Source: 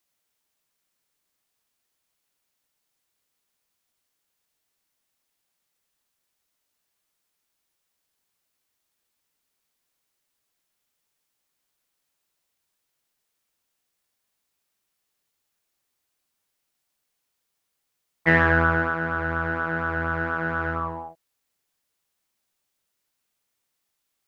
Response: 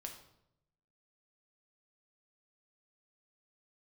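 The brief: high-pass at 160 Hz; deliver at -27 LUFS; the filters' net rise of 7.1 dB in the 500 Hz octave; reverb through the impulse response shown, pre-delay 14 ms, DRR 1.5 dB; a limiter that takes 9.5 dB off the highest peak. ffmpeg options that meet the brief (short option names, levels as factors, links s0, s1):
-filter_complex "[0:a]highpass=160,equalizer=f=500:t=o:g=8.5,alimiter=limit=0.282:level=0:latency=1,asplit=2[s0][s1];[1:a]atrim=start_sample=2205,adelay=14[s2];[s1][s2]afir=irnorm=-1:irlink=0,volume=1.26[s3];[s0][s3]amix=inputs=2:normalize=0,volume=0.501"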